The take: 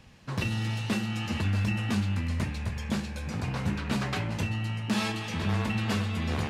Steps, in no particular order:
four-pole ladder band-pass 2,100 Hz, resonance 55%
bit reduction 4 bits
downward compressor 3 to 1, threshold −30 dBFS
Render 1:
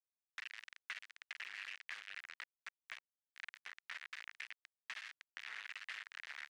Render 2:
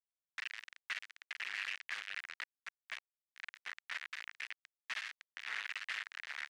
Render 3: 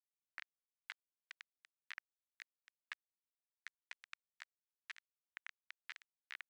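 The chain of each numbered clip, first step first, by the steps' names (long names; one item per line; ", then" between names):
bit reduction, then downward compressor, then four-pole ladder band-pass
bit reduction, then four-pole ladder band-pass, then downward compressor
downward compressor, then bit reduction, then four-pole ladder band-pass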